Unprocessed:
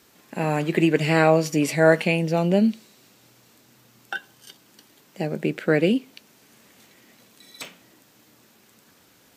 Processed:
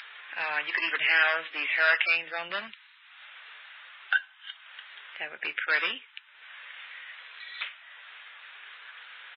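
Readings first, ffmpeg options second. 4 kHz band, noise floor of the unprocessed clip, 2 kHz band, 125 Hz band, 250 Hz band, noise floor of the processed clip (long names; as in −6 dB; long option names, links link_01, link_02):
+2.5 dB, −57 dBFS, +3.5 dB, below −35 dB, −30.5 dB, −56 dBFS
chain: -af "aresample=8000,aresample=44100,acompressor=mode=upward:threshold=-36dB:ratio=2.5,aresample=11025,volume=15dB,asoftclip=hard,volume=-15dB,aresample=44100,highpass=frequency=1600:width_type=q:width=1.9,volume=1.5dB" -ar 12000 -c:a libmp3lame -b:a 16k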